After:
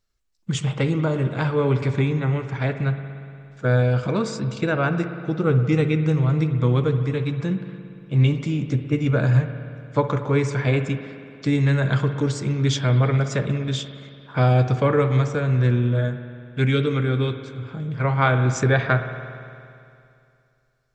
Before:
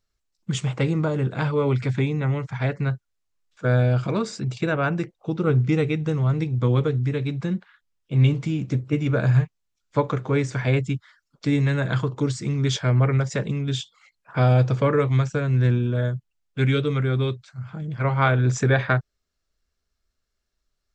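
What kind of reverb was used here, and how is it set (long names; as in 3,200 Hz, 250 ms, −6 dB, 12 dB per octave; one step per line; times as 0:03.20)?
spring reverb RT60 2.5 s, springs 58 ms, chirp 60 ms, DRR 8.5 dB
level +1 dB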